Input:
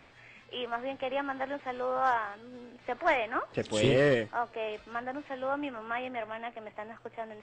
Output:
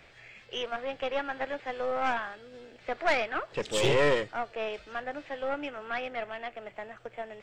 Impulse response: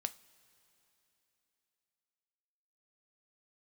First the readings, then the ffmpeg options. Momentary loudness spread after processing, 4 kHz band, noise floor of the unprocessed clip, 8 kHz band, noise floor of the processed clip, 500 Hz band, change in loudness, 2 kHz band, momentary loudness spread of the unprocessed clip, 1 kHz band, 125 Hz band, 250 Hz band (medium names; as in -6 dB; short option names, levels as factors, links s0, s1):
16 LU, +3.5 dB, -57 dBFS, +4.5 dB, -56 dBFS, +0.5 dB, +0.5 dB, +1.5 dB, 16 LU, -1.0 dB, -3.0 dB, -3.5 dB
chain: -af "equalizer=f=100:t=o:w=0.67:g=-5,equalizer=f=250:t=o:w=0.67:g=-10,equalizer=f=1000:t=o:w=0.67:g=-8,aeval=exprs='(tanh(17.8*val(0)+0.7)-tanh(0.7))/17.8':c=same,volume=2.37"